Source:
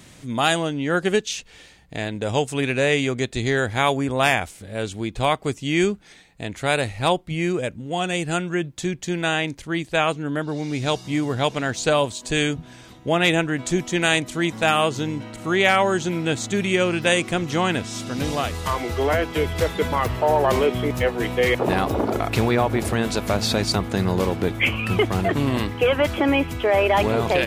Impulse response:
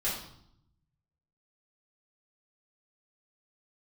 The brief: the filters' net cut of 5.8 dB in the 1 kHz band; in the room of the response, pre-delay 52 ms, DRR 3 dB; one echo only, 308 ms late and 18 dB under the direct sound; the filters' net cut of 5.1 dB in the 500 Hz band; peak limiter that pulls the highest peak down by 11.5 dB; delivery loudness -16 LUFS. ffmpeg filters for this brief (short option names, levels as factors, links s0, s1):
-filter_complex "[0:a]equalizer=f=500:t=o:g=-5,equalizer=f=1000:t=o:g=-6,alimiter=limit=0.15:level=0:latency=1,aecho=1:1:308:0.126,asplit=2[s0][s1];[1:a]atrim=start_sample=2205,adelay=52[s2];[s1][s2]afir=irnorm=-1:irlink=0,volume=0.335[s3];[s0][s3]amix=inputs=2:normalize=0,volume=2.99"